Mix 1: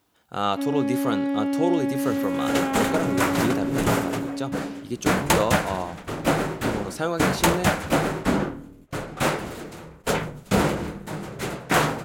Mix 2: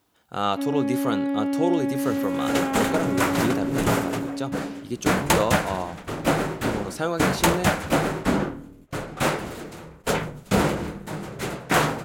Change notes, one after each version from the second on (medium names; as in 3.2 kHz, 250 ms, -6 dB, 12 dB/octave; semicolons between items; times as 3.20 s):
first sound: add distance through air 150 m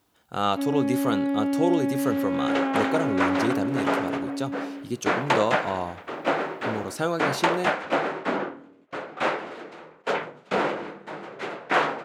second sound: add band-pass 380–3000 Hz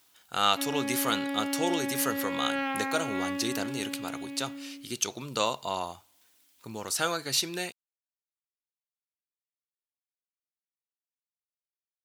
second sound: muted; master: add tilt shelf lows -9.5 dB, about 1.2 kHz